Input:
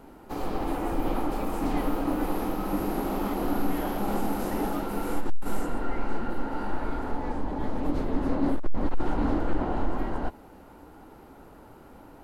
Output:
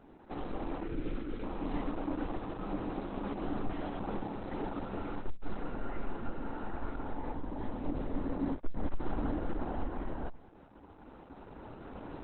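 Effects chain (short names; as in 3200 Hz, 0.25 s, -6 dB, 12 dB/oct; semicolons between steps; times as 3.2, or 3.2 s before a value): recorder AGC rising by 7.3 dB/s; 0.83–1.44 band shelf 820 Hz -14 dB 1.1 oct; gain -7 dB; Opus 8 kbps 48000 Hz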